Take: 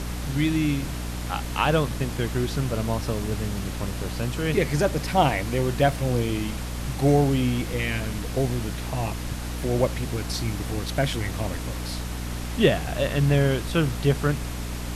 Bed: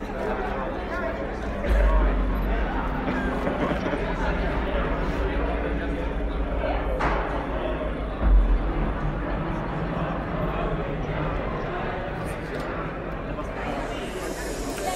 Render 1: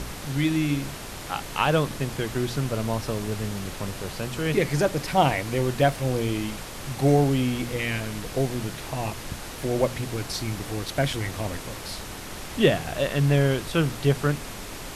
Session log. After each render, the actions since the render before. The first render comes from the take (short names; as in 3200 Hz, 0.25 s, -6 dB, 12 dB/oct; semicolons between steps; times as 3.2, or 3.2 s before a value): de-hum 60 Hz, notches 5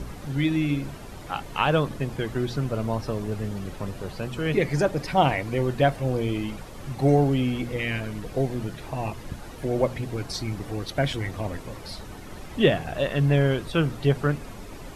denoiser 11 dB, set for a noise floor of -37 dBFS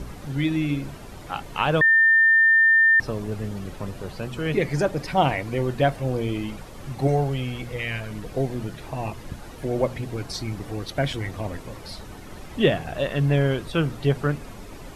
1.81–3 bleep 1800 Hz -13 dBFS; 7.07–8.11 bell 280 Hz -10 dB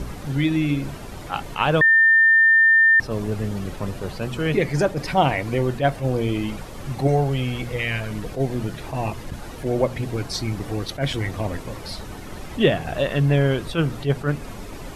in parallel at -3 dB: compressor, threshold -25 dBFS, peak gain reduction 11.5 dB; on the sum: attack slew limiter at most 230 dB/s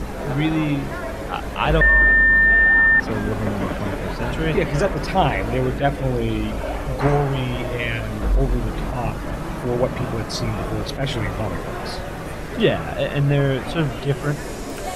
add bed -1 dB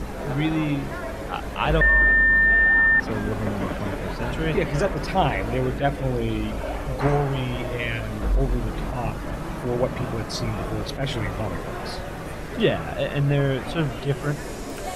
gain -3 dB